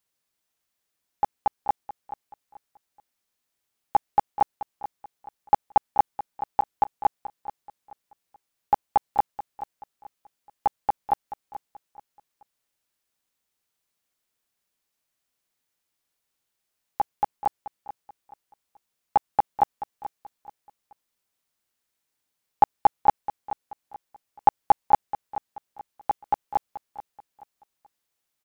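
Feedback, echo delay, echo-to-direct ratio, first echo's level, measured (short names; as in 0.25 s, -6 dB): 32%, 0.431 s, -13.5 dB, -14.0 dB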